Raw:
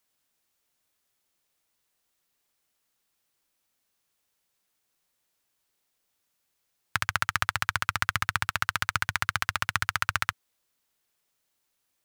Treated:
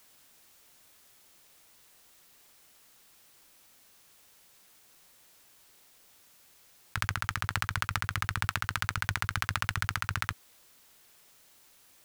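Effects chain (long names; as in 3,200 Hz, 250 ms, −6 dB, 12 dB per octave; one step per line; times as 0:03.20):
compressor whose output falls as the input rises −37 dBFS, ratio −1
level +6.5 dB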